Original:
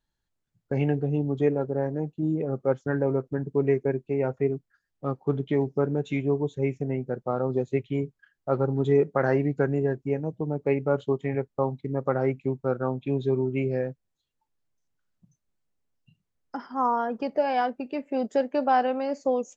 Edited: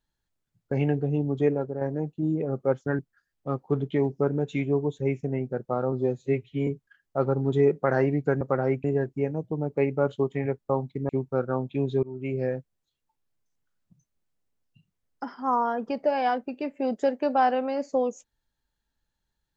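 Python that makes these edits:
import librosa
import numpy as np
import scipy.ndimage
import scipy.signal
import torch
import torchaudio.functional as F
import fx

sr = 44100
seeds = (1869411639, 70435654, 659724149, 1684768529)

y = fx.edit(x, sr, fx.fade_out_to(start_s=1.53, length_s=0.28, floor_db=-6.5),
    fx.cut(start_s=2.99, length_s=1.57),
    fx.stretch_span(start_s=7.49, length_s=0.5, factor=1.5),
    fx.move(start_s=11.98, length_s=0.43, to_s=9.73),
    fx.fade_in_from(start_s=13.35, length_s=0.42, floor_db=-20.5), tone=tone)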